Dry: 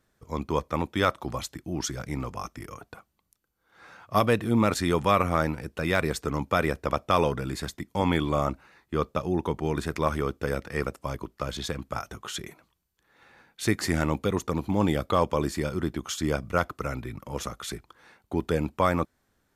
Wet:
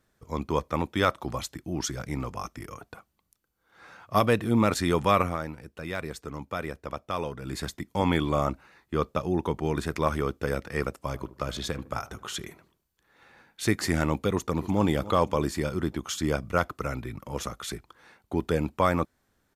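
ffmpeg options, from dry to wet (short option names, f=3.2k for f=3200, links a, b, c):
-filter_complex "[0:a]asettb=1/sr,asplit=3[a][b][c];[a]atrim=end=11.064[d];[b]atrim=start=11.06:end=13.73,asetpts=PTS-STARTPTS,afade=t=in:d=0.004:c=qsin,afade=t=out:st=2.666:d=0.004:c=qsin,asplit=2[e][f];[f]adelay=76,lowpass=f=1.3k:p=1,volume=-16dB,asplit=2[g][h];[h]adelay=76,lowpass=f=1.3k:p=1,volume=0.45,asplit=2[i][j];[j]adelay=76,lowpass=f=1.3k:p=1,volume=0.45,asplit=2[k][l];[l]adelay=76,lowpass=f=1.3k:p=1,volume=0.45[m];[e][g][i][k][m]amix=inputs=5:normalize=0,atrim=end_sample=117747[n];[c]atrim=start=13.726[o];[d][n]acrossfade=d=0.004:c1=hsin:c2=qsin[p];[p][o]acrossfade=d=0.004:c1=qsin:c2=hsin,asplit=2[q][r];[r]afade=t=in:st=14.29:d=0.01,afade=t=out:st=14.81:d=0.01,aecho=0:1:290|580|870|1160|1450:0.16788|0.0839402|0.0419701|0.0209851|0.0104925[s];[q][s]amix=inputs=2:normalize=0,asplit=3[t][u][v];[t]atrim=end=5.38,asetpts=PTS-STARTPTS,afade=t=out:st=5.21:d=0.17:silence=0.375837[w];[u]atrim=start=5.38:end=7.4,asetpts=PTS-STARTPTS,volume=-8.5dB[x];[v]atrim=start=7.4,asetpts=PTS-STARTPTS,afade=t=in:d=0.17:silence=0.375837[y];[w][x][y]concat=n=3:v=0:a=1"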